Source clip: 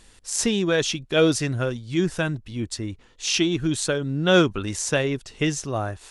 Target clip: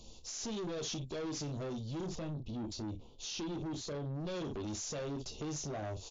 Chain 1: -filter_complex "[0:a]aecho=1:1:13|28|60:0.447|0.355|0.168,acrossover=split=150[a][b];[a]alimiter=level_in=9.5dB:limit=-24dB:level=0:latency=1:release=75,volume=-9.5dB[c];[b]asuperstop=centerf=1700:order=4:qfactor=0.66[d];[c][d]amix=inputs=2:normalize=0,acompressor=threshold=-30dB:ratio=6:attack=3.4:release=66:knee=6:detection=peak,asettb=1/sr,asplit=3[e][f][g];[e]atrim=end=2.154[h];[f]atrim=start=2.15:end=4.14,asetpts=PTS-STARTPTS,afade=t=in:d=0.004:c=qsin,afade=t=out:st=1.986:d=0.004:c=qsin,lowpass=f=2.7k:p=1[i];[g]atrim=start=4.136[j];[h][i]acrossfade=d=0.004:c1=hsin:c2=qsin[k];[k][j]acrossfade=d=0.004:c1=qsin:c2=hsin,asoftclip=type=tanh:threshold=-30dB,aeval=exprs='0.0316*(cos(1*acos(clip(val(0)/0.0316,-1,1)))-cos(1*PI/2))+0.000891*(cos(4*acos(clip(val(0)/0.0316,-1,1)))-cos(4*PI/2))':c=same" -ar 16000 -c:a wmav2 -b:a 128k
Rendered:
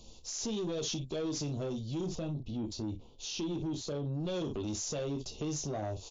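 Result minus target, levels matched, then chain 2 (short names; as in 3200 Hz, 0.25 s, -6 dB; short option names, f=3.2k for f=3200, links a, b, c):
soft clip: distortion -6 dB
-filter_complex "[0:a]aecho=1:1:13|28|60:0.447|0.355|0.168,acrossover=split=150[a][b];[a]alimiter=level_in=9.5dB:limit=-24dB:level=0:latency=1:release=75,volume=-9.5dB[c];[b]asuperstop=centerf=1700:order=4:qfactor=0.66[d];[c][d]amix=inputs=2:normalize=0,acompressor=threshold=-30dB:ratio=6:attack=3.4:release=66:knee=6:detection=peak,asettb=1/sr,asplit=3[e][f][g];[e]atrim=end=2.154[h];[f]atrim=start=2.15:end=4.14,asetpts=PTS-STARTPTS,afade=t=in:d=0.004:c=qsin,afade=t=out:st=1.986:d=0.004:c=qsin,lowpass=f=2.7k:p=1[i];[g]atrim=start=4.136[j];[h][i]acrossfade=d=0.004:c1=hsin:c2=qsin[k];[k][j]acrossfade=d=0.004:c1=qsin:c2=hsin,asoftclip=type=tanh:threshold=-36.5dB,aeval=exprs='0.0316*(cos(1*acos(clip(val(0)/0.0316,-1,1)))-cos(1*PI/2))+0.000891*(cos(4*acos(clip(val(0)/0.0316,-1,1)))-cos(4*PI/2))':c=same" -ar 16000 -c:a wmav2 -b:a 128k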